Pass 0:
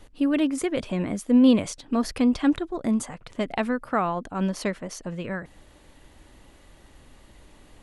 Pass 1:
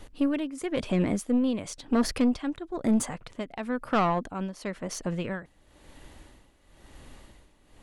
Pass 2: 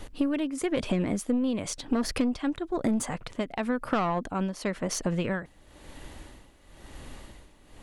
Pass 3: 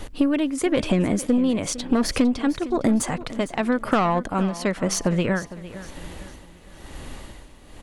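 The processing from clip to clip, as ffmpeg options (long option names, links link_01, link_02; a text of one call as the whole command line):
ffmpeg -i in.wav -af "tremolo=f=0.99:d=0.8,aeval=exprs='(tanh(11.2*val(0)+0.35)-tanh(0.35))/11.2':channel_layout=same,volume=4dB" out.wav
ffmpeg -i in.wav -af "acompressor=threshold=-28dB:ratio=6,volume=5dB" out.wav
ffmpeg -i in.wav -af "aecho=1:1:456|912|1368|1824:0.158|0.0634|0.0254|0.0101,volume=6.5dB" out.wav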